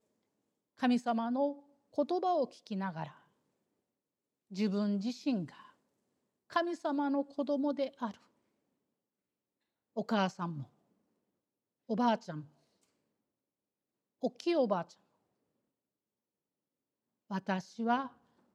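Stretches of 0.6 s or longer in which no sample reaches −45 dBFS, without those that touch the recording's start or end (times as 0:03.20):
0:03.11–0:04.52
0:05.60–0:06.50
0:08.14–0:09.97
0:10.64–0:11.89
0:12.42–0:14.23
0:14.91–0:17.31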